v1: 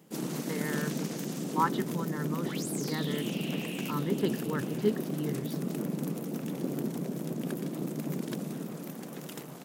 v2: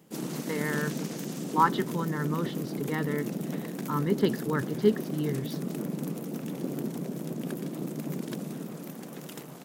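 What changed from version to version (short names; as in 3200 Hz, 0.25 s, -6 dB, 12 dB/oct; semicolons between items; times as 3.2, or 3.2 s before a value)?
speech +5.0 dB; second sound: muted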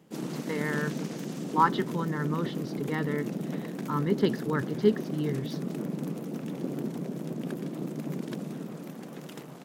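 background: add high shelf 7200 Hz -10.5 dB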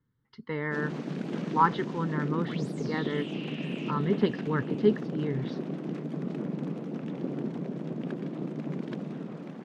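first sound: entry +0.60 s; second sound: unmuted; master: add LPF 3300 Hz 12 dB/oct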